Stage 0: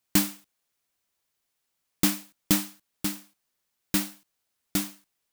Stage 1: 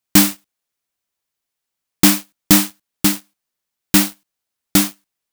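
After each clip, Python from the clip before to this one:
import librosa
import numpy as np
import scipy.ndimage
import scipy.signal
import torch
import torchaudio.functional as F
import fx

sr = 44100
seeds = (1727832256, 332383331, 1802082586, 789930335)

y = fx.leveller(x, sr, passes=3)
y = F.gain(torch.from_numpy(y), 4.0).numpy()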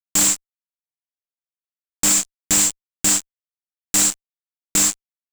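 y = fx.lowpass_res(x, sr, hz=7500.0, q=11.0)
y = fx.low_shelf(y, sr, hz=460.0, db=-5.5)
y = fx.fuzz(y, sr, gain_db=28.0, gate_db=-35.0)
y = F.gain(torch.from_numpy(y), -1.0).numpy()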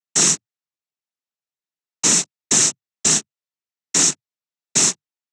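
y = fx.noise_vocoder(x, sr, seeds[0], bands=12)
y = F.gain(torch.from_numpy(y), 2.0).numpy()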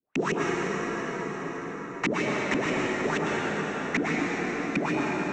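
y = fx.filter_lfo_lowpass(x, sr, shape='saw_up', hz=6.3, low_hz=220.0, high_hz=2600.0, q=6.0)
y = fx.rev_plate(y, sr, seeds[1], rt60_s=4.2, hf_ratio=0.65, predelay_ms=90, drr_db=-4.5)
y = fx.band_squash(y, sr, depth_pct=70)
y = F.gain(torch.from_numpy(y), -7.5).numpy()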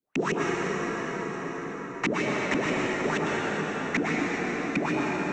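y = x + 10.0 ** (-13.5 / 20.0) * np.pad(x, (int(393 * sr / 1000.0), 0))[:len(x)]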